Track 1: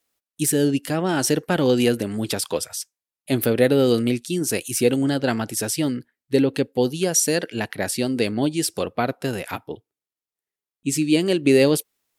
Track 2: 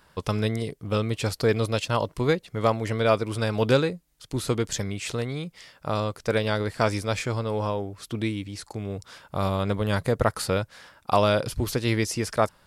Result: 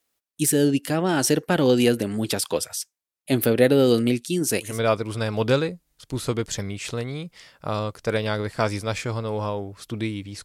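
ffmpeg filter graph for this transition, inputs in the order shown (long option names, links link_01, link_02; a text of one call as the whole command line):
ffmpeg -i cue0.wav -i cue1.wav -filter_complex "[0:a]apad=whole_dur=10.44,atrim=end=10.44,atrim=end=4.8,asetpts=PTS-STARTPTS[link_01];[1:a]atrim=start=2.81:end=8.65,asetpts=PTS-STARTPTS[link_02];[link_01][link_02]acrossfade=duration=0.2:curve1=tri:curve2=tri" out.wav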